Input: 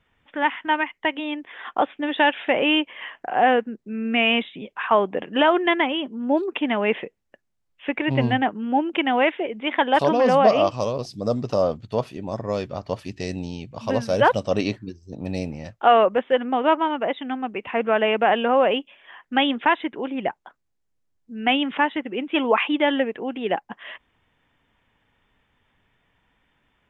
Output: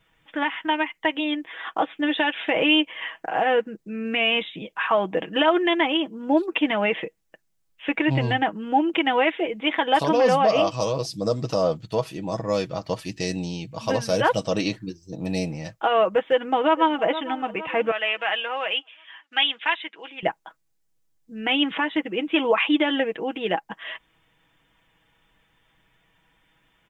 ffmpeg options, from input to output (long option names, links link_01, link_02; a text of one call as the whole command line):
ffmpeg -i in.wav -filter_complex "[0:a]asplit=2[link_01][link_02];[link_02]afade=type=in:start_time=16.26:duration=0.01,afade=type=out:start_time=17.04:duration=0.01,aecho=0:1:460|920|1380|1840|2300:0.141254|0.0776896|0.0427293|0.0235011|0.0129256[link_03];[link_01][link_03]amix=inputs=2:normalize=0,asettb=1/sr,asplit=3[link_04][link_05][link_06];[link_04]atrim=end=17.914[link_07];[link_05]atrim=start=17.91:end=20.23,asetpts=PTS-STARTPTS,afade=type=in:duration=0.004:curve=qsin,afade=type=out:start_time=2.316:duration=0.004:curve=qsin,bandpass=frequency=3100:width_type=q:width=0.88[link_08];[link_06]atrim=start=20.226[link_09];[link_07][link_08]acrossfade=duration=0.004:curve1=hsin:curve2=qsin[link_10];[link_10][link_09]acrossfade=duration=0.004:curve1=qsin:curve2=hsin,alimiter=limit=-12dB:level=0:latency=1:release=113,highshelf=frequency=4500:gain=9.5,aecho=1:1:6.2:0.58" out.wav